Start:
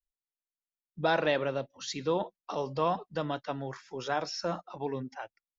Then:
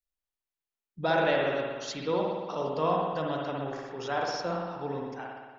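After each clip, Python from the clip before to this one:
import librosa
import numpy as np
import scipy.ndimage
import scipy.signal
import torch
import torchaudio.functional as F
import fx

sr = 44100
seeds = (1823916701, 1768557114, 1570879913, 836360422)

y = fx.rev_spring(x, sr, rt60_s=1.4, pass_ms=(57,), chirp_ms=80, drr_db=-1.5)
y = y * librosa.db_to_amplitude(-1.5)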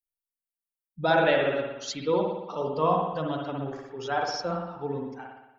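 y = fx.bin_expand(x, sr, power=1.5)
y = y * librosa.db_to_amplitude(5.5)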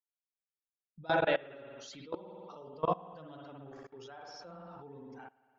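y = fx.level_steps(x, sr, step_db=22)
y = y * librosa.db_to_amplitude(-5.0)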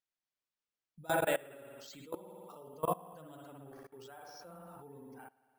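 y = np.repeat(x[::4], 4)[:len(x)]
y = y * librosa.db_to_amplitude(-2.5)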